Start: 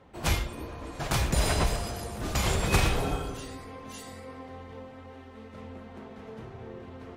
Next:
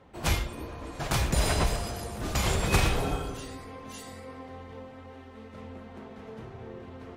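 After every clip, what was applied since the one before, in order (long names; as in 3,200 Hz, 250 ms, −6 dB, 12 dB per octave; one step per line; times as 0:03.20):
no processing that can be heard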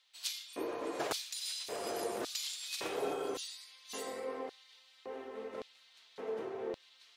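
downward compressor 6 to 1, threshold −33 dBFS, peak gain reduction 14 dB
auto-filter high-pass square 0.89 Hz 400–4,000 Hz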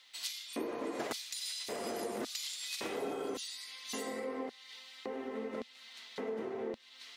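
downward compressor 2.5 to 1, threshold −53 dBFS, peak gain reduction 14.5 dB
hollow resonant body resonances 230/2,000 Hz, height 11 dB, ringing for 45 ms
level +10 dB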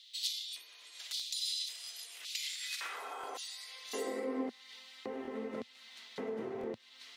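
high-pass filter sweep 3,600 Hz → 110 Hz, 0:02.00–0:05.10
regular buffer underruns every 0.68 s, samples 1,024, repeat, from 0:00.47
level −1.5 dB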